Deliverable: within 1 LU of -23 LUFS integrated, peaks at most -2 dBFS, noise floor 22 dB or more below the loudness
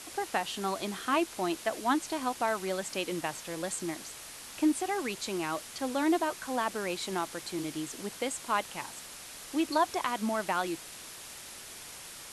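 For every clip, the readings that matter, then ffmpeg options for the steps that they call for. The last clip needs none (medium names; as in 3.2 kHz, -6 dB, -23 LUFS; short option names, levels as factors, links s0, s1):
noise floor -46 dBFS; noise floor target -55 dBFS; loudness -32.5 LUFS; peak level -14.0 dBFS; loudness target -23.0 LUFS
-> -af "afftdn=nr=9:nf=-46"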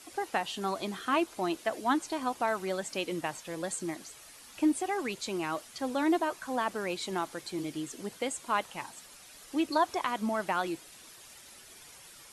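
noise floor -53 dBFS; noise floor target -55 dBFS
-> -af "afftdn=nr=6:nf=-53"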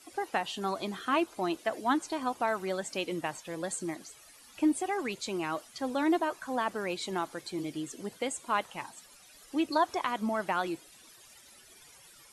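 noise floor -56 dBFS; loudness -32.5 LUFS; peak level -14.5 dBFS; loudness target -23.0 LUFS
-> -af "volume=2.99"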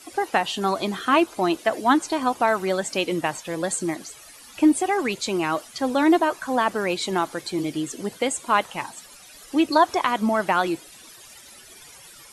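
loudness -23.0 LUFS; peak level -4.5 dBFS; noise floor -47 dBFS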